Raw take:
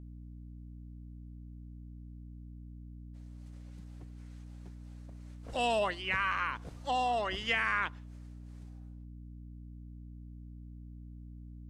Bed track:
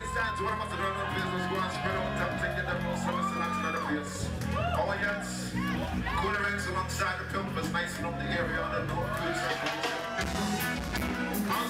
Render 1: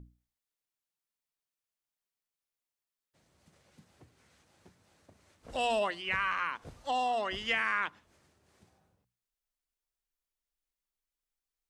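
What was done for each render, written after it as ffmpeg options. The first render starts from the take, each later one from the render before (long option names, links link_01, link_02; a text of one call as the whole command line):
ffmpeg -i in.wav -af "bandreject=frequency=60:width_type=h:width=6,bandreject=frequency=120:width_type=h:width=6,bandreject=frequency=180:width_type=h:width=6,bandreject=frequency=240:width_type=h:width=6,bandreject=frequency=300:width_type=h:width=6" out.wav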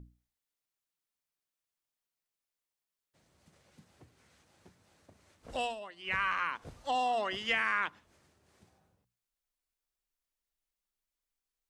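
ffmpeg -i in.wav -filter_complex "[0:a]asettb=1/sr,asplit=3[link_01][link_02][link_03];[link_01]atrim=end=6.954[link_04];[link_02]atrim=start=6.95:end=7.49,asetpts=PTS-STARTPTS,afade=type=in:duration=0.004:curve=qsin,afade=type=out:start_time=0.536:duration=0.004:curve=qsin,highpass=110[link_05];[link_03]atrim=start=7.486[link_06];[link_04][link_05]acrossfade=duration=0.004:curve1=hsin:curve2=qsin[link_07];[link_07][link_06]acrossfade=duration=0.004:curve1=qsin:curve2=hsin,asplit=3[link_08][link_09][link_10];[link_08]atrim=end=5.75,asetpts=PTS-STARTPTS,afade=type=out:start_time=5.48:duration=0.27:curve=qsin:silence=0.188365[link_11];[link_09]atrim=start=5.75:end=5.96,asetpts=PTS-STARTPTS,volume=-14.5dB[link_12];[link_10]atrim=start=5.96,asetpts=PTS-STARTPTS,afade=type=in:duration=0.27:curve=qsin:silence=0.188365[link_13];[link_11][link_12][link_13]concat=n=3:v=0:a=1" out.wav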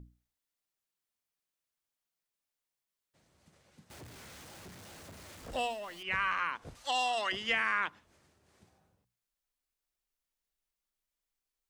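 ffmpeg -i in.wav -filter_complex "[0:a]asettb=1/sr,asplit=3[link_01][link_02][link_03];[link_01]atrim=end=3.904[link_04];[link_02]atrim=start=3.9:end=6.03,asetpts=PTS-STARTPTS,afade=type=in:duration=0.004:curve=qsin,afade=type=out:start_time=2.126:duration=0.004:curve=qsin,aeval=exprs='val(0)+0.5*0.00473*sgn(val(0))':channel_layout=same[link_05];[link_03]atrim=start=6.026[link_06];[link_04][link_05]acrossfade=duration=0.004:curve1=hsin:curve2=qsin[link_07];[link_07][link_06]acrossfade=duration=0.004:curve1=qsin:curve2=hsin,asettb=1/sr,asplit=3[link_08][link_09][link_10];[link_08]atrim=end=6.754[link_11];[link_09]atrim=start=6.75:end=7.32,asetpts=PTS-STARTPTS,afade=type=in:duration=0.004:curve=qsin,afade=type=out:start_time=0.566:duration=0.004:curve=qsin,tiltshelf=frequency=970:gain=-9[link_12];[link_10]atrim=start=7.316[link_13];[link_11][link_12]acrossfade=duration=0.004:curve1=hsin:curve2=qsin[link_14];[link_14][link_13]acrossfade=duration=0.004:curve1=qsin:curve2=hsin" out.wav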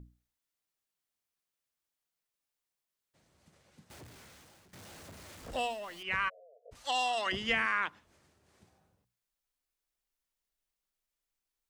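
ffmpeg -i in.wav -filter_complex "[0:a]asplit=3[link_01][link_02][link_03];[link_01]afade=type=out:start_time=6.28:duration=0.02[link_04];[link_02]asuperpass=centerf=550:order=20:qfactor=2,afade=type=in:start_time=6.28:duration=0.02,afade=type=out:start_time=6.71:duration=0.02[link_05];[link_03]afade=type=in:start_time=6.71:duration=0.02[link_06];[link_04][link_05][link_06]amix=inputs=3:normalize=0,asettb=1/sr,asplit=3[link_07][link_08][link_09];[link_07]atrim=end=7.264[link_10];[link_08]atrim=start=7.26:end=7.66,asetpts=PTS-STARTPTS,afade=type=in:duration=0.004:curve=qsin,afade=type=out:start_time=0.396:duration=0.004:curve=qsin,lowshelf=frequency=280:gain=10[link_11];[link_09]atrim=start=7.656[link_12];[link_10][link_11]acrossfade=duration=0.004:curve1=hsin:curve2=qsin[link_13];[link_13][link_12]acrossfade=duration=0.004:curve1=qsin:curve2=hsin,asplit=2[link_14][link_15];[link_14]atrim=end=4.73,asetpts=PTS-STARTPTS,afade=type=out:start_time=3.86:duration=0.87:silence=0.141254[link_16];[link_15]atrim=start=4.73,asetpts=PTS-STARTPTS,afade=type=in:duration=0.004:curve=hsin:silence=0.141254[link_17];[link_16][link_17]concat=n=2:v=0:a=1" out.wav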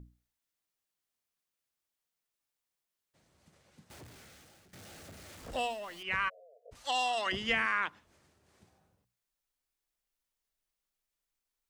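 ffmpeg -i in.wav -filter_complex "[0:a]asettb=1/sr,asplit=3[link_01][link_02][link_03];[link_01]atrim=end=4.164[link_04];[link_02]atrim=start=4.16:end=5.33,asetpts=PTS-STARTPTS,afade=type=in:duration=0.004:curve=qsin,afade=type=out:start_time=1.166:duration=0.004:curve=qsin,bandreject=frequency=1000:width=5.4[link_05];[link_03]atrim=start=5.326[link_06];[link_04][link_05]acrossfade=duration=0.004:curve1=hsin:curve2=qsin[link_07];[link_07][link_06]acrossfade=duration=0.004:curve1=qsin:curve2=hsin" out.wav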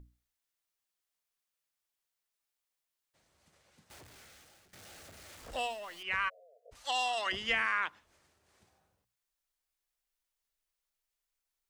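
ffmpeg -i in.wav -af "equalizer=frequency=170:width_type=o:width=2.6:gain=-8" out.wav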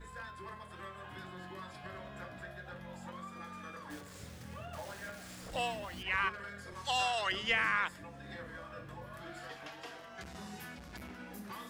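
ffmpeg -i in.wav -i bed.wav -filter_complex "[1:a]volume=-16dB[link_01];[0:a][link_01]amix=inputs=2:normalize=0" out.wav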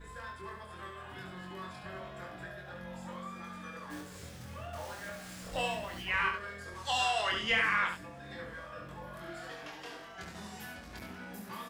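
ffmpeg -i in.wav -filter_complex "[0:a]asplit=2[link_01][link_02];[link_02]adelay=23,volume=-4dB[link_03];[link_01][link_03]amix=inputs=2:normalize=0,aecho=1:1:70:0.473" out.wav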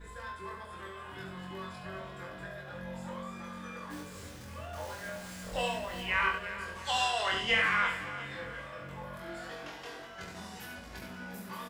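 ffmpeg -i in.wav -filter_complex "[0:a]asplit=2[link_01][link_02];[link_02]adelay=21,volume=-5.5dB[link_03];[link_01][link_03]amix=inputs=2:normalize=0,aecho=1:1:351|702|1053|1404|1755:0.224|0.103|0.0474|0.0218|0.01" out.wav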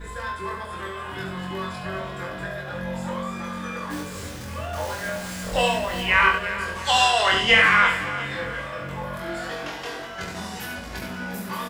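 ffmpeg -i in.wav -af "volume=11.5dB" out.wav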